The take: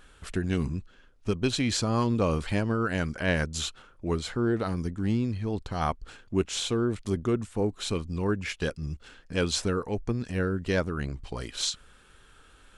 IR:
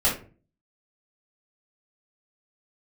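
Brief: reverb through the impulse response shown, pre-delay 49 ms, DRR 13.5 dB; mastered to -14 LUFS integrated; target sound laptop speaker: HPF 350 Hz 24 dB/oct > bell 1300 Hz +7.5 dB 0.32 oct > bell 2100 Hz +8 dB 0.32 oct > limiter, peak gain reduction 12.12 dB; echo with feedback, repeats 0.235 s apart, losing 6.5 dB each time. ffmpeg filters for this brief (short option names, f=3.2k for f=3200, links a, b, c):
-filter_complex "[0:a]aecho=1:1:235|470|705|940|1175|1410:0.473|0.222|0.105|0.0491|0.0231|0.0109,asplit=2[a][b];[1:a]atrim=start_sample=2205,adelay=49[c];[b][c]afir=irnorm=-1:irlink=0,volume=-27dB[d];[a][d]amix=inputs=2:normalize=0,highpass=f=350:w=0.5412,highpass=f=350:w=1.3066,equalizer=f=1.3k:t=o:w=0.32:g=7.5,equalizer=f=2.1k:t=o:w=0.32:g=8,volume=19.5dB,alimiter=limit=-2.5dB:level=0:latency=1"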